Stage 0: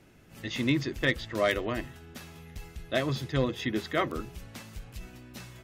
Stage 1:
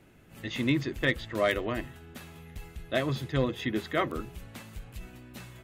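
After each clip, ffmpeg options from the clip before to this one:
-af "equalizer=f=5400:w=2.1:g=-6.5"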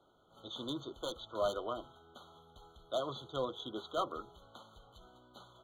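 -filter_complex "[0:a]acrossover=split=460 4800:gain=0.141 1 0.112[s0][s1][s2];[s0][s1][s2]amix=inputs=3:normalize=0,volume=17.8,asoftclip=hard,volume=0.0562,afftfilt=real='re*eq(mod(floor(b*sr/1024/1500),2),0)':imag='im*eq(mod(floor(b*sr/1024/1500),2),0)':win_size=1024:overlap=0.75,volume=0.794"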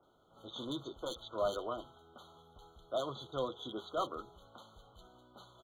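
-filter_complex "[0:a]acrossover=split=2300[s0][s1];[s1]adelay=30[s2];[s0][s2]amix=inputs=2:normalize=0"

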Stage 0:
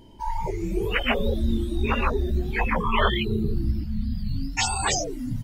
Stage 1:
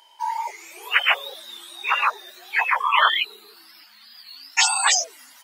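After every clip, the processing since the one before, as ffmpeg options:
-af "highpass=f=890:w=0.5412,highpass=f=890:w=1.3066,volume=2.37"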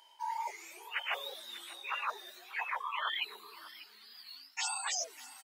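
-af "areverse,acompressor=threshold=0.0501:ratio=6,areverse,aecho=1:1:593:0.141,volume=0.422"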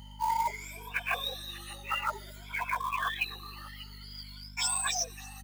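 -af "afftfilt=real='re*pow(10,19/40*sin(2*PI*(1.7*log(max(b,1)*sr/1024/100)/log(2)-(0.53)*(pts-256)/sr)))':imag='im*pow(10,19/40*sin(2*PI*(1.7*log(max(b,1)*sr/1024/100)/log(2)-(0.53)*(pts-256)/sr)))':win_size=1024:overlap=0.75,acrusher=bits=4:mode=log:mix=0:aa=0.000001,aeval=exprs='val(0)+0.00447*(sin(2*PI*50*n/s)+sin(2*PI*2*50*n/s)/2+sin(2*PI*3*50*n/s)/3+sin(2*PI*4*50*n/s)/4+sin(2*PI*5*50*n/s)/5)':c=same"

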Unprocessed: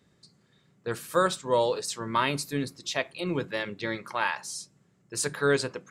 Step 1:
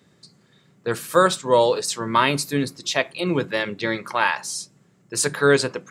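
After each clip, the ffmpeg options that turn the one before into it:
-af "highpass=100,volume=2.37"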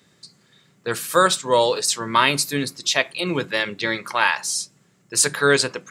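-af "tiltshelf=f=1300:g=-4,volume=1.19"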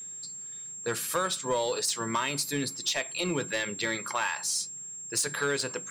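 -af "acompressor=threshold=0.1:ratio=6,aeval=exprs='val(0)+0.0178*sin(2*PI*7500*n/s)':c=same,asoftclip=type=tanh:threshold=0.168,volume=0.668"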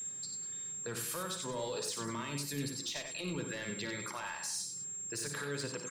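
-filter_complex "[0:a]acrossover=split=280[s0][s1];[s1]acompressor=threshold=0.0126:ratio=2.5[s2];[s0][s2]amix=inputs=2:normalize=0,alimiter=level_in=2.11:limit=0.0631:level=0:latency=1:release=108,volume=0.473,asplit=2[s3][s4];[s4]aecho=0:1:56|91|196:0.335|0.501|0.178[s5];[s3][s5]amix=inputs=2:normalize=0"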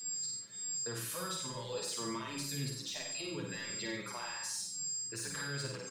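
-filter_complex "[0:a]asplit=2[s0][s1];[s1]adelay=50,volume=0.631[s2];[s0][s2]amix=inputs=2:normalize=0,aeval=exprs='val(0)+0.00562*sin(2*PI*4900*n/s)':c=same,asplit=2[s3][s4];[s4]adelay=7.6,afreqshift=-1.7[s5];[s3][s5]amix=inputs=2:normalize=1"

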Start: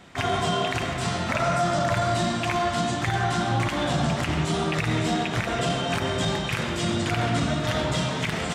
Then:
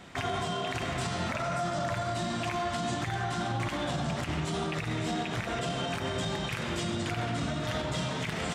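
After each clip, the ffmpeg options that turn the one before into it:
-af "alimiter=limit=0.0708:level=0:latency=1:release=194"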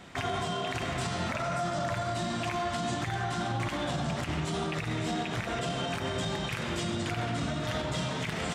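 -af anull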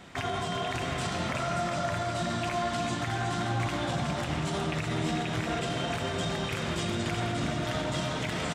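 -af "aecho=1:1:367|734|1101|1468|1835|2202|2569|2936:0.473|0.274|0.159|0.0923|0.0535|0.0311|0.018|0.0104"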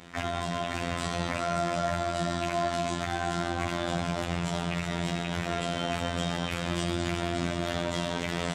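-af "afftfilt=real='hypot(re,im)*cos(PI*b)':imag='0':win_size=2048:overlap=0.75,volume=1.5"

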